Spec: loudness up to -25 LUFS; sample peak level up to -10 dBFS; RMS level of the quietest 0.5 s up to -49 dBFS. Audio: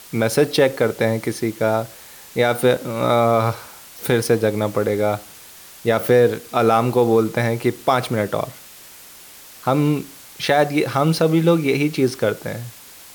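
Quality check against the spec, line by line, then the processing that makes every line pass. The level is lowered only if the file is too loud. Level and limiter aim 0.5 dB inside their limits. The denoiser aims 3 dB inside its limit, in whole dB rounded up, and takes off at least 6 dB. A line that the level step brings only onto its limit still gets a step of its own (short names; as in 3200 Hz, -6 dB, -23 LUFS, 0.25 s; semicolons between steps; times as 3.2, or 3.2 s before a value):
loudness -19.5 LUFS: fail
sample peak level -4.5 dBFS: fail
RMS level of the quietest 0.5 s -42 dBFS: fail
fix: denoiser 6 dB, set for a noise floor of -42 dBFS; gain -6 dB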